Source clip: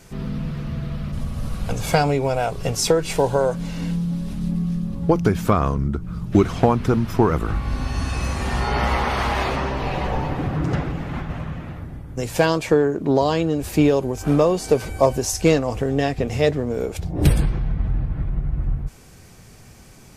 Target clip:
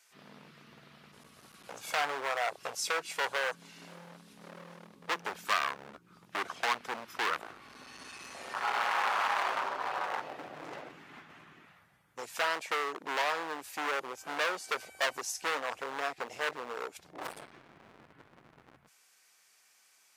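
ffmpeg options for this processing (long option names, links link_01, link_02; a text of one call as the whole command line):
ffmpeg -i in.wav -af "afwtdn=0.0794,volume=21.5dB,asoftclip=hard,volume=-21.5dB,highpass=1300,volume=4dB" out.wav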